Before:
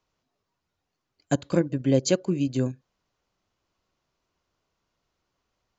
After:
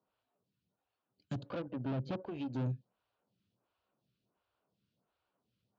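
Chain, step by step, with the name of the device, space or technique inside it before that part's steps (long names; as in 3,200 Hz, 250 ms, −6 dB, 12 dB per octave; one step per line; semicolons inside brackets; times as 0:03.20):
0:01.42–0:02.26: treble cut that deepens with the level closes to 1,400 Hz, closed at −19.5 dBFS
vibe pedal into a guitar amplifier (phaser with staggered stages 1.4 Hz; tube saturation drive 36 dB, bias 0.5; loudspeaker in its box 83–4,100 Hz, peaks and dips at 120 Hz +7 dB, 200 Hz +7 dB, 360 Hz −3 dB, 1,100 Hz −4 dB, 2,000 Hz −9 dB)
level +1 dB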